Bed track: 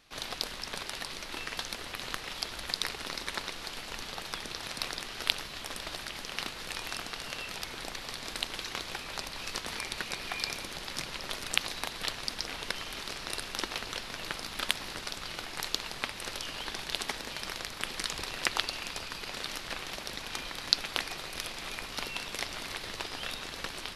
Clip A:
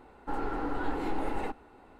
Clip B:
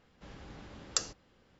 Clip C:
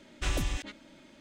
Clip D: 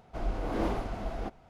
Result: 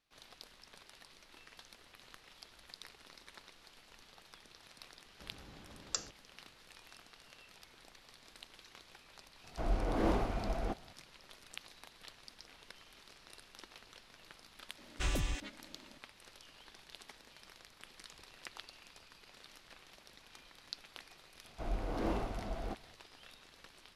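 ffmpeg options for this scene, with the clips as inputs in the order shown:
-filter_complex "[4:a]asplit=2[s0][s1];[0:a]volume=0.106[s2];[2:a]atrim=end=1.59,asetpts=PTS-STARTPTS,volume=0.501,afade=t=in:d=0.004:c=hsin,afade=t=out:st=1.586:d=0.004:c=hsin,adelay=4980[s3];[s0]atrim=end=1.49,asetpts=PTS-STARTPTS,volume=0.891,afade=t=in:d=0.004:c=hsin,afade=t=out:st=1.486:d=0.004:c=hsin,adelay=9440[s4];[3:a]atrim=end=1.2,asetpts=PTS-STARTPTS,volume=0.631,afade=t=in:d=0.004:c=hsin,afade=t=out:st=1.196:d=0.004:c=hsin,adelay=14780[s5];[s1]atrim=end=1.49,asetpts=PTS-STARTPTS,volume=0.562,afade=t=in:d=0.004:c=hsin,afade=t=out:st=1.486:d=0.004:c=hsin,adelay=21450[s6];[s2][s3][s4][s5][s6]amix=inputs=5:normalize=0"

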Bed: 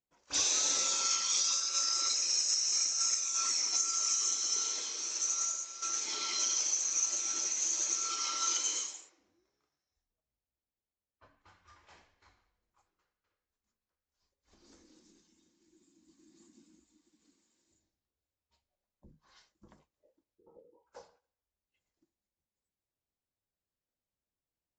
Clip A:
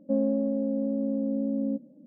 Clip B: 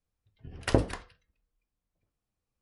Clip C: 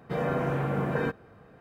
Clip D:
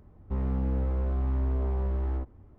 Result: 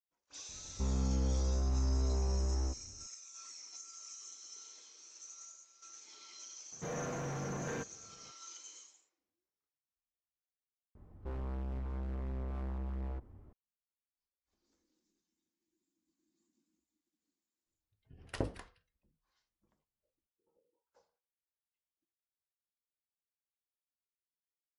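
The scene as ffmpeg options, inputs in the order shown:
-filter_complex "[4:a]asplit=2[s0][s1];[0:a]volume=0.112[s2];[3:a]asoftclip=type=hard:threshold=0.0447[s3];[s1]asoftclip=type=hard:threshold=0.02[s4];[s0]atrim=end=2.58,asetpts=PTS-STARTPTS,volume=0.596,afade=t=in:d=0.004:c=hsin,afade=t=out:st=2.576:d=0.004:c=hsin,adelay=490[s5];[s3]atrim=end=1.6,asetpts=PTS-STARTPTS,volume=0.355,afade=t=in:d=0.004:c=hsin,afade=t=out:st=1.596:d=0.004:c=hsin,adelay=6720[s6];[s4]atrim=end=2.58,asetpts=PTS-STARTPTS,volume=0.668,afade=t=in:d=0.004:c=hsin,afade=t=out:st=2.576:d=0.004:c=hsin,adelay=10950[s7];[2:a]atrim=end=2.61,asetpts=PTS-STARTPTS,volume=0.251,afade=t=in:d=0.004:c=hsin,afade=t=out:st=2.606:d=0.004:c=hsin,adelay=17660[s8];[s2][s5][s6][s7][s8]amix=inputs=5:normalize=0"

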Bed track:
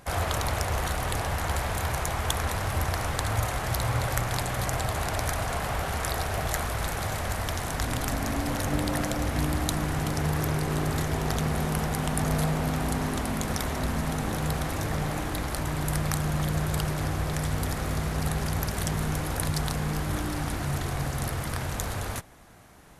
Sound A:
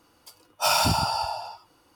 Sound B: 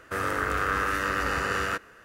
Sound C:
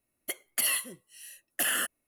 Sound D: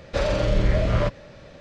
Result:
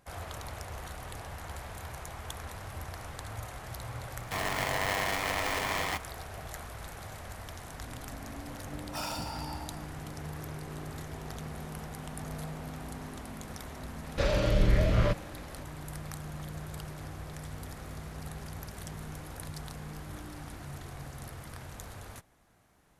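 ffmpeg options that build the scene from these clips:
-filter_complex "[0:a]volume=0.211[s0];[2:a]aeval=exprs='val(0)*sgn(sin(2*PI*570*n/s))':c=same[s1];[4:a]equalizer=f=760:w=1.2:g=-3.5[s2];[s1]atrim=end=2.04,asetpts=PTS-STARTPTS,volume=0.596,afade=t=in:d=0.004:c=hsin,afade=t=out:st=2.036:d=0.004:c=hsin,adelay=4200[s3];[1:a]atrim=end=1.95,asetpts=PTS-STARTPTS,volume=0.158,afade=t=in:d=0.004:c=hsin,afade=t=out:st=1.946:d=0.004:c=hsin,adelay=8320[s4];[s2]atrim=end=1.6,asetpts=PTS-STARTPTS,volume=0.668,afade=t=in:d=0.004:c=hsin,afade=t=out:st=1.596:d=0.004:c=hsin,adelay=14040[s5];[s0][s3][s4][s5]amix=inputs=4:normalize=0"

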